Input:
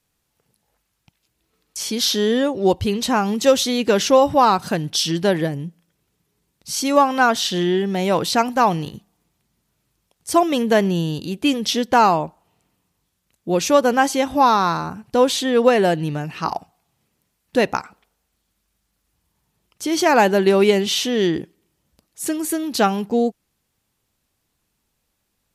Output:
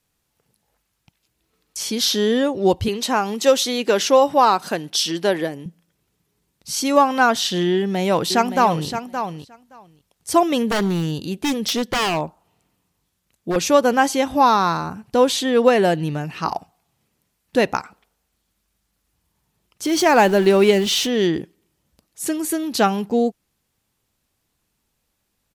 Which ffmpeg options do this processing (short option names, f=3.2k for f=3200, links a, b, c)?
-filter_complex "[0:a]asettb=1/sr,asplit=3[a][b][c];[a]atrim=end=2.884[d];[b]atrim=start=2.88:end=5.66,asetpts=PTS-STARTPTS,afade=t=in:d=0.004:c=qsin,afade=t=out:st=2.776:d=0.004:c=qsin,highpass=280[e];[c]atrim=start=5.656[f];[d][e]acrossfade=d=0.004:c1=hsin:c2=qsin[g];[g][f]acrossfade=d=0.004:c1=qsin:c2=hsin,asplit=2[h][i];[i]afade=t=in:st=7.73:d=0.01,afade=t=out:st=8.87:d=0.01,aecho=0:1:570|1140:0.354813|0.0354813[j];[h][j]amix=inputs=2:normalize=0,asettb=1/sr,asplit=3[k][l][m];[k]atrim=end=10.674[n];[l]atrim=start=10.67:end=13.56,asetpts=PTS-STARTPTS,afade=t=in:d=0.004:c=qsin,afade=t=out:st=2.886:d=0.004:c=qsin,aeval=exprs='0.178*(abs(mod(val(0)/0.178+3,4)-2)-1)':c=same[o];[m]atrim=start=13.556[p];[n][o]acrossfade=d=0.004:c1=hsin:c2=qsin[q];[q][p]acrossfade=d=0.004:c1=qsin:c2=hsin,asettb=1/sr,asplit=3[r][s][t];[r]atrim=end=19.854[u];[s]atrim=start=19.85:end=21.07,asetpts=PTS-STARTPTS,afade=t=in:d=0.004:c=qsin,afade=t=out:st=1.216:d=0.004:c=qsin,aeval=exprs='val(0)+0.5*0.0335*sgn(val(0))':c=same[v];[t]atrim=start=21.066[w];[u][v]acrossfade=d=0.004:c1=hsin:c2=qsin[x];[x][w]acrossfade=d=0.004:c1=qsin:c2=hsin"